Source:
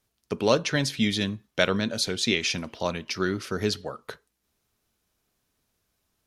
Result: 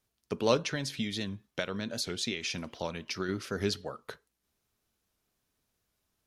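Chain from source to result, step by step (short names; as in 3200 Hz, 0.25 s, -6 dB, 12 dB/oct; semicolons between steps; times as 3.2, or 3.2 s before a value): 0.58–3.29 compressor 10:1, threshold -25 dBFS, peak gain reduction 10 dB; record warp 78 rpm, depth 100 cents; gain -4.5 dB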